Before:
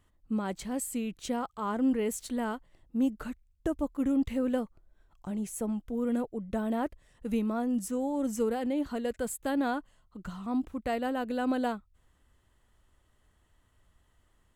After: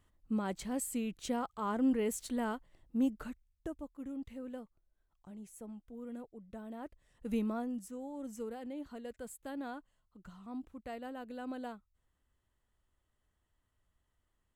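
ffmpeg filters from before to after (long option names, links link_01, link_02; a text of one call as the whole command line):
ffmpeg -i in.wav -af "volume=8.5dB,afade=type=out:start_time=2.98:duration=0.9:silence=0.251189,afade=type=in:start_time=6.79:duration=0.63:silence=0.266073,afade=type=out:start_time=7.42:duration=0.4:silence=0.354813" out.wav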